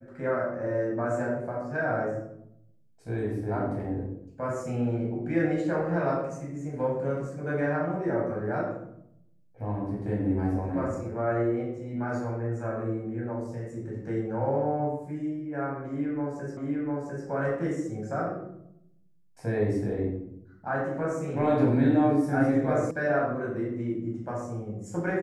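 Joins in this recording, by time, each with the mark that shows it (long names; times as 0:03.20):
0:16.57: the same again, the last 0.7 s
0:22.91: cut off before it has died away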